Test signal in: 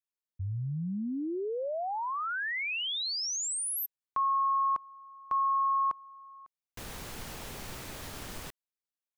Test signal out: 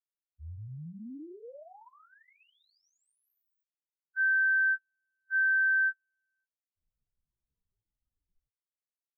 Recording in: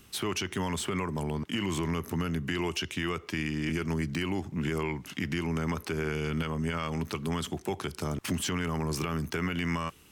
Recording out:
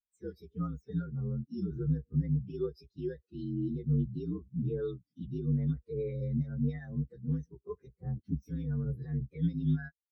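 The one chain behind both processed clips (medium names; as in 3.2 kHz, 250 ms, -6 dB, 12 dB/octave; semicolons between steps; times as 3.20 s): frequency axis rescaled in octaves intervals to 124%; spectral contrast expander 2.5:1; trim +1.5 dB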